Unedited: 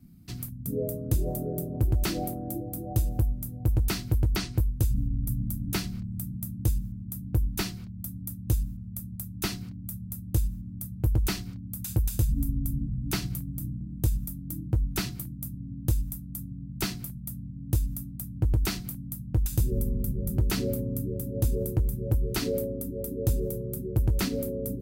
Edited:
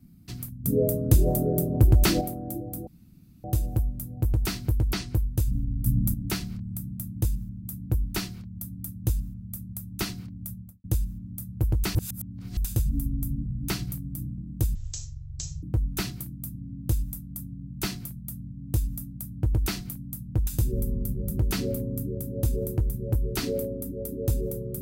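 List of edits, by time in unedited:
0.64–2.21 s: gain +7 dB
2.87 s: insert room tone 0.57 s
5.29–5.57 s: gain +6.5 dB
9.92–10.27 s: studio fade out
11.38–12.00 s: reverse
14.18–14.62 s: speed 50%

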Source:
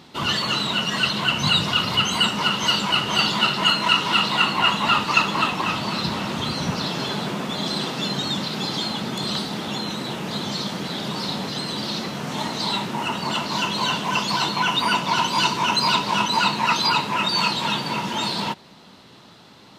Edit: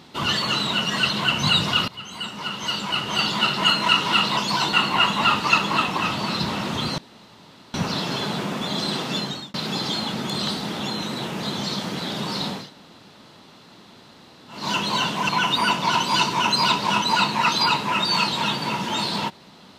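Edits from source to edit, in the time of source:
1.88–3.70 s: fade in, from -21 dB
6.62 s: insert room tone 0.76 s
8.04–8.42 s: fade out
11.48–13.48 s: room tone, crossfade 0.24 s
14.17–14.53 s: move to 4.37 s

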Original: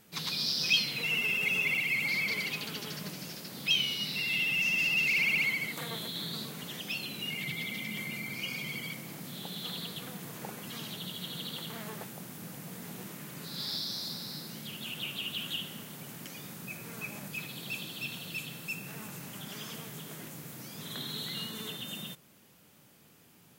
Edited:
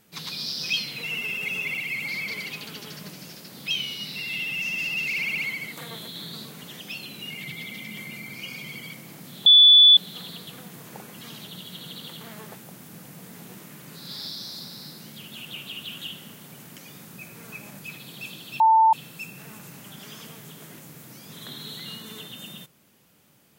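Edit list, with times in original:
9.46 s: add tone 3.46 kHz -9 dBFS 0.51 s
18.09–18.42 s: bleep 890 Hz -13 dBFS

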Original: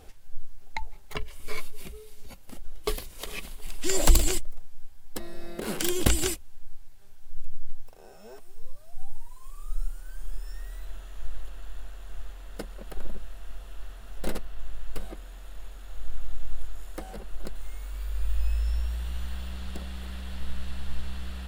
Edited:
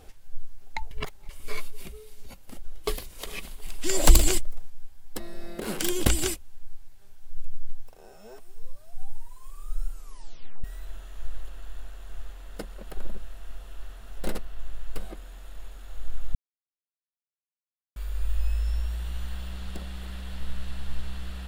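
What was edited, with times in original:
0.91–1.29 s: reverse
4.04–4.70 s: gain +3 dB
9.91 s: tape stop 0.73 s
16.35–17.96 s: mute

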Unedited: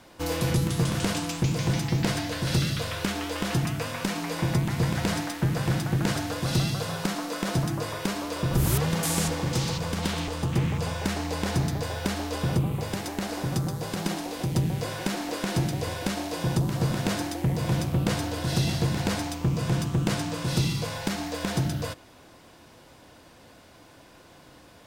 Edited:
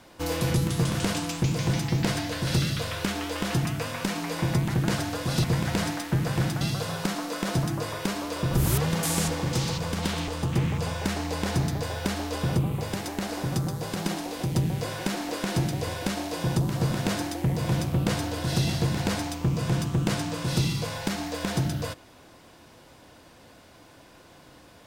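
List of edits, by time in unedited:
5.91–6.61 s: move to 4.74 s

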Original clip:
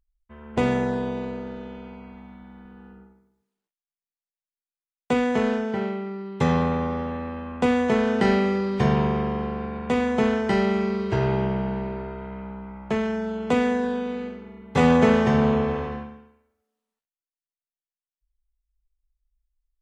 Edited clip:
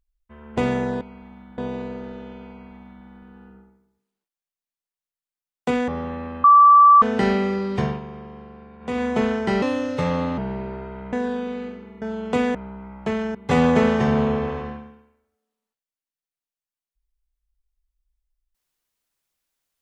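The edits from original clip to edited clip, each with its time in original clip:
1.93–2.50 s: copy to 1.01 s
5.31–6.90 s: delete
7.46–8.04 s: bleep 1.16 kHz -7.5 dBFS
8.77–10.06 s: dip -13 dB, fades 0.25 s
10.64–11.64 s: speed 132%
12.39–13.19 s: swap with 13.72–14.61 s

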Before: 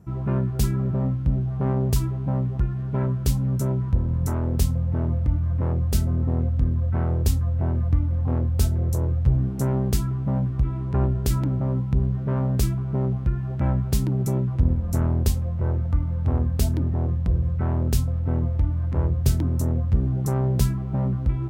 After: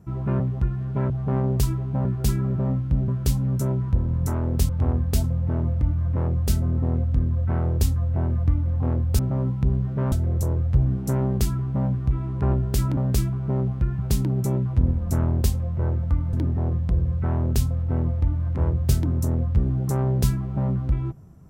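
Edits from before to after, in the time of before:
0.40–1.43 s: swap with 2.38–3.08 s
11.49–12.42 s: move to 8.64 s
13.44–13.81 s: delete
16.15–16.70 s: move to 4.69 s

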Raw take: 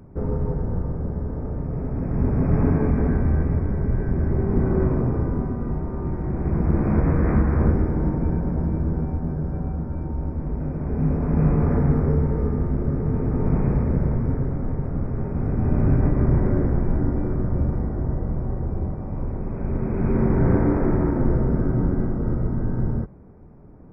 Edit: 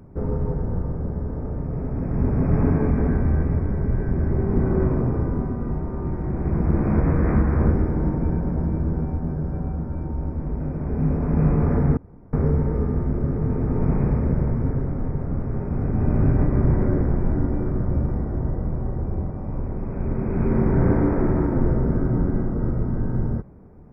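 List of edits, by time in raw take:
11.97 s: insert room tone 0.36 s

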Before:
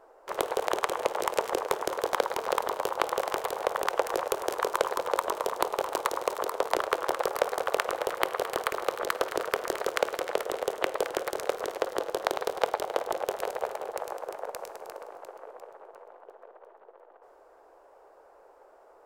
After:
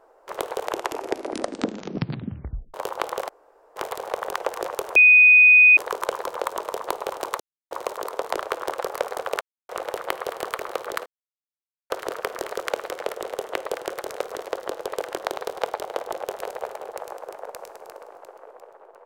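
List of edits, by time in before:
0.60 s: tape stop 2.14 s
3.29 s: insert room tone 0.47 s
4.49 s: add tone 2.49 kHz -9 dBFS 0.81 s
6.12 s: insert silence 0.31 s
7.82 s: insert silence 0.28 s
9.19 s: insert silence 0.84 s
10.90–11.19 s: copy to 12.17 s

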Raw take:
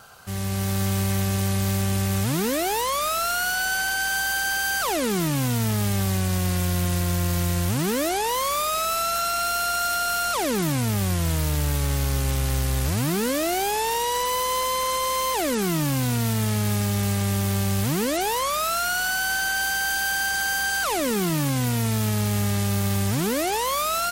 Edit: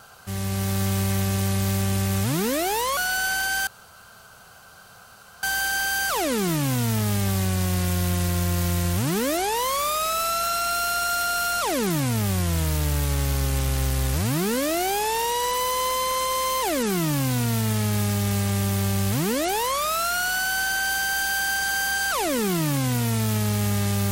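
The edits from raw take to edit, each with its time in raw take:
2.97–3.45 s: delete
4.15 s: insert room tone 1.76 s

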